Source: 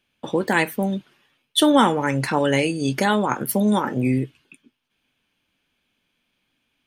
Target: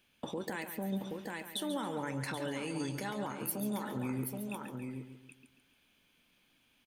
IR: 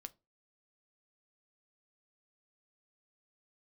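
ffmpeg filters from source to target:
-filter_complex "[0:a]acompressor=threshold=-35dB:ratio=2.5,asplit=2[link_01][link_02];[link_02]aecho=0:1:776:0.316[link_03];[link_01][link_03]amix=inputs=2:normalize=0,alimiter=level_in=4dB:limit=-24dB:level=0:latency=1:release=215,volume=-4dB,highshelf=frequency=9100:gain=7.5,asplit=2[link_04][link_05];[link_05]aecho=0:1:139|278|417|556|695:0.335|0.144|0.0619|0.0266|0.0115[link_06];[link_04][link_06]amix=inputs=2:normalize=0"

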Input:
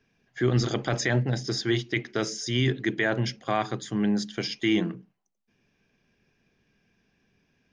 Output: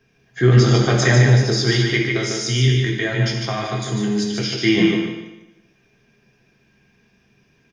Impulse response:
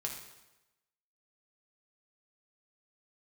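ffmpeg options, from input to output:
-filter_complex "[0:a]asettb=1/sr,asplit=3[link_01][link_02][link_03];[link_01]atrim=end=2.154[link_04];[link_02]atrim=start=2.15:end=4.52,asetpts=PTS-STARTPTS,afade=type=in:duration=0.004:curve=qsin,afade=type=out:start_time=2.366:duration=0.004:curve=qsin,acrossover=split=130|3000[link_05][link_06][link_07];[link_06]acompressor=threshold=-31dB:ratio=6[link_08];[link_05][link_08][link_07]amix=inputs=3:normalize=0[link_09];[link_03]atrim=start=4.516[link_10];[link_04][link_09]acrossfade=duration=0.004:curve1=hsin:curve2=qsin[link_11];[link_11][link_10]acrossfade=duration=0.004:curve1=qsin:curve2=hsin,aecho=1:1:148|296|444|592:0.631|0.164|0.0427|0.0111[link_12];[1:a]atrim=start_sample=2205[link_13];[link_12][link_13]afir=irnorm=-1:irlink=0,volume=8dB"

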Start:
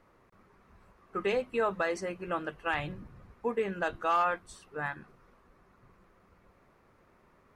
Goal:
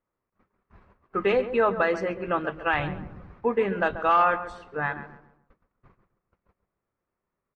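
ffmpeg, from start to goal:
ffmpeg -i in.wav -filter_complex "[0:a]agate=range=-28dB:threshold=-58dB:ratio=16:detection=peak,lowpass=3100,asplit=2[link_01][link_02];[link_02]adelay=136,lowpass=frequency=1400:poles=1,volume=-11dB,asplit=2[link_03][link_04];[link_04]adelay=136,lowpass=frequency=1400:poles=1,volume=0.39,asplit=2[link_05][link_06];[link_06]adelay=136,lowpass=frequency=1400:poles=1,volume=0.39,asplit=2[link_07][link_08];[link_08]adelay=136,lowpass=frequency=1400:poles=1,volume=0.39[link_09];[link_03][link_05][link_07][link_09]amix=inputs=4:normalize=0[link_10];[link_01][link_10]amix=inputs=2:normalize=0,volume=7dB" out.wav

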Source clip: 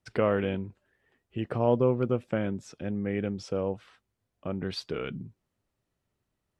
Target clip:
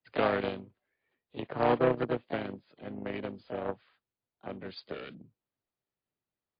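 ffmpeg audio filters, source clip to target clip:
ffmpeg -i in.wav -filter_complex "[0:a]asplit=2[link_01][link_02];[link_02]asetrate=55563,aresample=44100,atempo=0.793701,volume=-4dB[link_03];[link_01][link_03]amix=inputs=2:normalize=0,aeval=exprs='0.355*(cos(1*acos(clip(val(0)/0.355,-1,1)))-cos(1*PI/2))+0.0355*(cos(7*acos(clip(val(0)/0.355,-1,1)))-cos(7*PI/2))':channel_layout=same,acrossover=split=110|360|1400[link_04][link_05][link_06][link_07];[link_05]crystalizer=i=1.5:c=0[link_08];[link_04][link_08][link_06][link_07]amix=inputs=4:normalize=0,lowshelf=frequency=140:gain=-11.5" -ar 11025 -c:a libmp3lame -b:a 32k out.mp3

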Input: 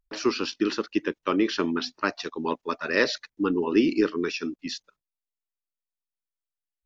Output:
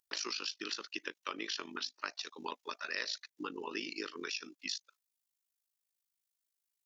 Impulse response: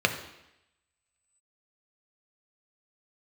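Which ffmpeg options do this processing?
-af "highpass=frequency=1200:poles=1,highshelf=frequency=3000:gain=12,acompressor=threshold=-38dB:ratio=3,tremolo=f=52:d=0.75,volume=1.5dB"

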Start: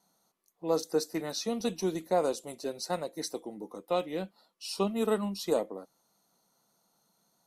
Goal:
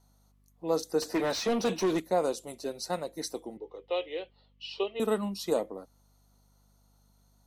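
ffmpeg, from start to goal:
ffmpeg -i in.wav -filter_complex "[0:a]asettb=1/sr,asplit=3[link_01][link_02][link_03];[link_01]atrim=end=3.574[link_04];[link_02]atrim=start=3.57:end=5,asetpts=PTS-STARTPTS,afade=type=in:duration=0.004:curve=qsin,afade=type=out:start_time=1.426:duration=0.004:curve=qsin,highpass=frequency=420:width=0.5412,highpass=frequency=420:width=1.3066,equalizer=frequency=420:width_type=q:width=4:gain=7,equalizer=frequency=680:width_type=q:width=4:gain=-6,equalizer=frequency=990:width_type=q:width=4:gain=-6,equalizer=frequency=1400:width_type=q:width=4:gain=-10,equalizer=frequency=2100:width_type=q:width=4:gain=3,equalizer=frequency=3000:width_type=q:width=4:gain=9,lowpass=frequency=3900:width=0.5412,lowpass=frequency=3900:width=1.3066[link_05];[link_03]atrim=start=4.996[link_06];[link_04][link_05]acrossfade=duration=0.004:curve1=hsin:curve2=qsin[link_07];[link_07][link_06]acrossfade=duration=0.004:curve1=qsin:curve2=hsin,aeval=exprs='val(0)+0.000631*(sin(2*PI*50*n/s)+sin(2*PI*2*50*n/s)/2+sin(2*PI*3*50*n/s)/3+sin(2*PI*4*50*n/s)/4+sin(2*PI*5*50*n/s)/5)':channel_layout=same,asettb=1/sr,asplit=3[link_08][link_09][link_10];[link_08]atrim=end=1.024[link_11];[link_09]atrim=start=1.02:end=2,asetpts=PTS-STARTPTS,afade=type=in:duration=0.004:curve=qsin,afade=type=out:start_time=0.976:duration=0.004:curve=qsin,asplit=2[link_12][link_13];[link_13]highpass=frequency=720:poles=1,volume=24dB,asoftclip=type=tanh:threshold=-19dB[link_14];[link_12][link_14]amix=inputs=2:normalize=0,lowpass=frequency=1900:poles=1,volume=-6dB[link_15];[link_10]atrim=start=1.996[link_16];[link_11][link_15]acrossfade=duration=0.004:curve1=hsin:curve2=qsin[link_17];[link_17][link_16]acrossfade=duration=0.004:curve1=qsin:curve2=hsin" out.wav

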